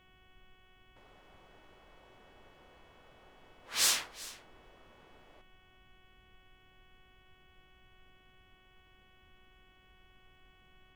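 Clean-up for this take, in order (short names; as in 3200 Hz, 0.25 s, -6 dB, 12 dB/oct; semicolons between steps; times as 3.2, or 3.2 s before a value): clip repair -17 dBFS; de-hum 371.4 Hz, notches 9; noise print and reduce 30 dB; inverse comb 0.384 s -18.5 dB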